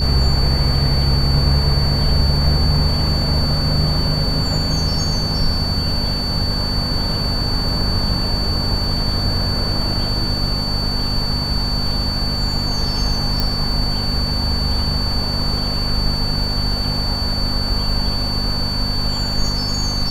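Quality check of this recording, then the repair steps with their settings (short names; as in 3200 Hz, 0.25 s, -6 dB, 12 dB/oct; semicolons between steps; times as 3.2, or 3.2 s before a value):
crackle 20/s -27 dBFS
hum 50 Hz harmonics 5 -24 dBFS
tone 4500 Hz -22 dBFS
13.4 pop -5 dBFS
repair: de-click; de-hum 50 Hz, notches 5; notch 4500 Hz, Q 30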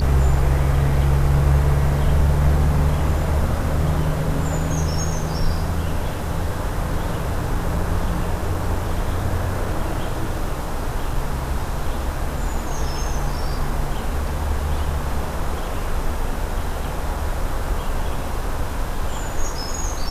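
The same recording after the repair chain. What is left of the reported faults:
none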